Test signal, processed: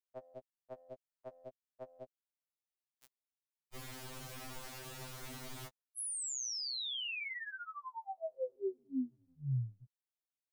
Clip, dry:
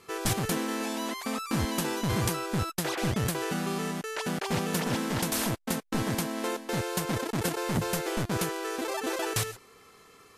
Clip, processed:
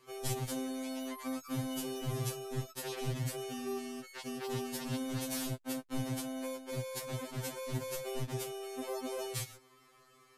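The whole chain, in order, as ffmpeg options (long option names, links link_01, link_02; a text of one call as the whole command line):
ffmpeg -i in.wav -filter_complex "[0:a]acrossover=split=310|630|2200[link_01][link_02][link_03][link_04];[link_03]acompressor=threshold=-41dB:ratio=16[link_05];[link_01][link_02][link_05][link_04]amix=inputs=4:normalize=0,afftfilt=real='re*2.45*eq(mod(b,6),0)':imag='im*2.45*eq(mod(b,6),0)':win_size=2048:overlap=0.75,volume=-6dB" out.wav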